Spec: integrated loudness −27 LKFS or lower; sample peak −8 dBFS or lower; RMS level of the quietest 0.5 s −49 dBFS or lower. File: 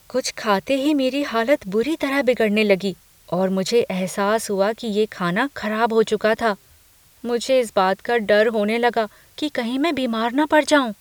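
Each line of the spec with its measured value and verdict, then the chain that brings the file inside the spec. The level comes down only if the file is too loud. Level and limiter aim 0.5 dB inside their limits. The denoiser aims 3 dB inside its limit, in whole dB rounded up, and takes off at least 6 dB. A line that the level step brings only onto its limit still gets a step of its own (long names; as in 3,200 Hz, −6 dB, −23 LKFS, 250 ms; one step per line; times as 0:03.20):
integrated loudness −20.5 LKFS: out of spec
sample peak −3.5 dBFS: out of spec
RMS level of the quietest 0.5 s −53 dBFS: in spec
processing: level −7 dB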